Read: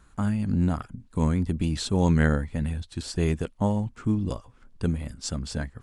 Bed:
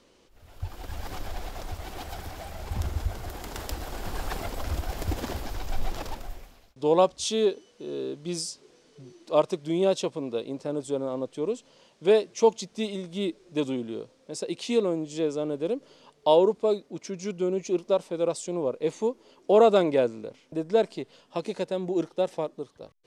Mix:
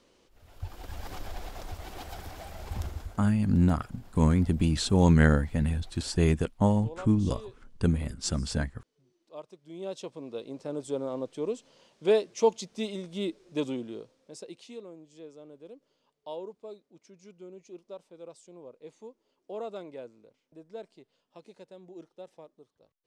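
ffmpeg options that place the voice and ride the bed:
ffmpeg -i stem1.wav -i stem2.wav -filter_complex "[0:a]adelay=3000,volume=1dB[link_01];[1:a]volume=15dB,afade=type=out:start_time=2.76:duration=0.47:silence=0.125893,afade=type=in:start_time=9.61:duration=1.35:silence=0.11885,afade=type=out:start_time=13.65:duration=1.1:silence=0.149624[link_02];[link_01][link_02]amix=inputs=2:normalize=0" out.wav

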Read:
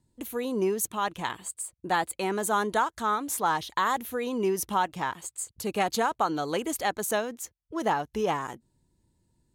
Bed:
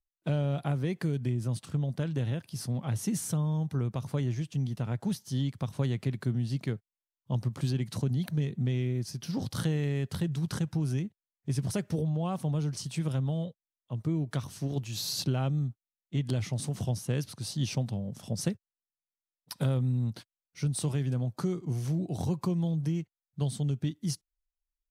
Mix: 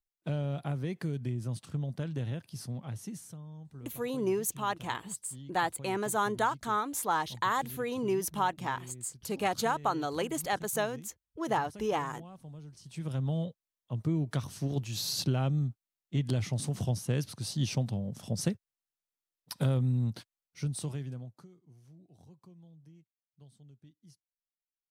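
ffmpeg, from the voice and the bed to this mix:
ffmpeg -i stem1.wav -i stem2.wav -filter_complex "[0:a]adelay=3650,volume=-3.5dB[link_01];[1:a]volume=13dB,afade=type=out:start_time=2.48:duration=0.89:silence=0.223872,afade=type=in:start_time=12.81:duration=0.54:silence=0.141254,afade=type=out:start_time=20.21:duration=1.27:silence=0.0501187[link_02];[link_01][link_02]amix=inputs=2:normalize=0" out.wav

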